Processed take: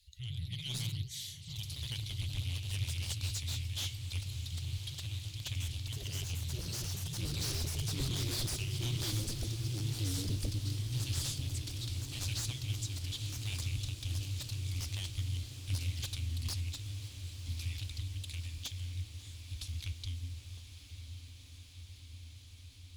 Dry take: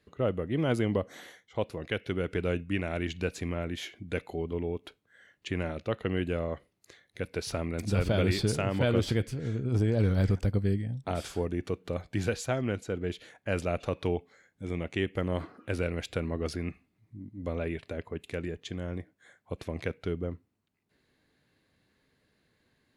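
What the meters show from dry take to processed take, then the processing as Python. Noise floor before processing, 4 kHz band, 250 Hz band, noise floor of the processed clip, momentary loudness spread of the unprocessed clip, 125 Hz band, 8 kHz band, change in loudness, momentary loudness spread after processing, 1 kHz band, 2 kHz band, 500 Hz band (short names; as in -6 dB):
-75 dBFS, +4.0 dB, -15.0 dB, -52 dBFS, 12 LU, -3.0 dB, +6.5 dB, -6.0 dB, 13 LU, -16.0 dB, -10.0 dB, -23.0 dB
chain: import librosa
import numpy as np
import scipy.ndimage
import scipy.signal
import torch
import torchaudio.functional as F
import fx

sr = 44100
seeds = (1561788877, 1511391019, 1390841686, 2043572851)

p1 = scipy.signal.sosfilt(scipy.signal.cheby2(4, 60, [190.0, 1200.0], 'bandstop', fs=sr, output='sos'), x)
p2 = fx.peak_eq(p1, sr, hz=130.0, db=10.5, octaves=0.47)
p3 = fx.fold_sine(p2, sr, drive_db=19, ceiling_db=-23.5)
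p4 = p2 + F.gain(torch.from_numpy(p3), -11.0).numpy()
p5 = fx.echo_diffused(p4, sr, ms=1109, feedback_pct=79, wet_db=-11.5)
p6 = fx.echo_pitch(p5, sr, ms=120, semitones=2, count=3, db_per_echo=-3.0)
p7 = p6 + fx.echo_single(p6, sr, ms=543, db=-20.5, dry=0)
p8 = fx.doppler_dist(p7, sr, depth_ms=0.21)
y = F.gain(torch.from_numpy(p8), -3.0).numpy()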